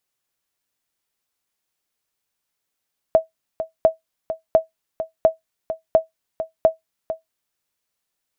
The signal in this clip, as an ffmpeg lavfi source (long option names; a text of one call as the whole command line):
ffmpeg -f lavfi -i "aevalsrc='0.596*(sin(2*PI*646*mod(t,0.7))*exp(-6.91*mod(t,0.7)/0.14)+0.266*sin(2*PI*646*max(mod(t,0.7)-0.45,0))*exp(-6.91*max(mod(t,0.7)-0.45,0)/0.14))':duration=4.2:sample_rate=44100" out.wav